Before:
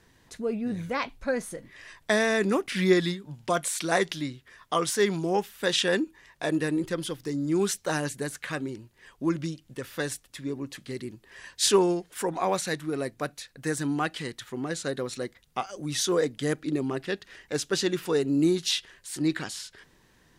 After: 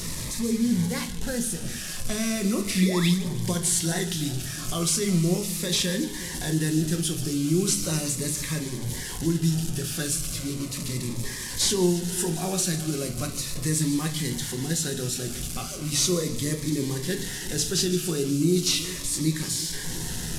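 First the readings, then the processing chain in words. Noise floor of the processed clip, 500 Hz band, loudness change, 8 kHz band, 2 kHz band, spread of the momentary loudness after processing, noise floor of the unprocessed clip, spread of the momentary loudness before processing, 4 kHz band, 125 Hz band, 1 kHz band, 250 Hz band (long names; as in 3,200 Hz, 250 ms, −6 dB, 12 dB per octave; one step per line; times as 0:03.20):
−34 dBFS, −3.5 dB, +2.5 dB, +8.5 dB, −3.5 dB, 8 LU, −62 dBFS, 13 LU, +3.5 dB, +9.0 dB, −7.0 dB, +3.0 dB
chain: linear delta modulator 64 kbit/s, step −33 dBFS
dynamic equaliser 780 Hz, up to −6 dB, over −40 dBFS, Q 0.89
brickwall limiter −20.5 dBFS, peak gain reduction 9 dB
sound drawn into the spectrogram rise, 0:02.82–0:03.10, 280–3,600 Hz −33 dBFS
bass and treble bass +7 dB, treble +10 dB
echo with a time of its own for lows and highs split 840 Hz, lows 357 ms, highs 149 ms, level −15.5 dB
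rectangular room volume 210 cubic metres, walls furnished, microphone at 1 metre
phaser whose notches keep moving one way falling 0.37 Hz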